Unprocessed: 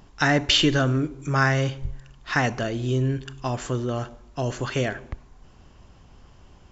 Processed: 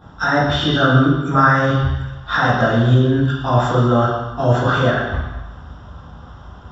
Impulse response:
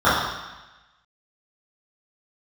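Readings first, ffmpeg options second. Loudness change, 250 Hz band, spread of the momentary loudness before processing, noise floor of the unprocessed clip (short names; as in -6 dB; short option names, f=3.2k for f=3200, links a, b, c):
+7.5 dB, +8.5 dB, 18 LU, -52 dBFS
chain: -filter_complex "[0:a]equalizer=f=3.2k:t=o:w=0.65:g=4,alimiter=limit=-18.5dB:level=0:latency=1:release=104[a];[1:a]atrim=start_sample=2205[b];[a][b]afir=irnorm=-1:irlink=0,volume=-11dB"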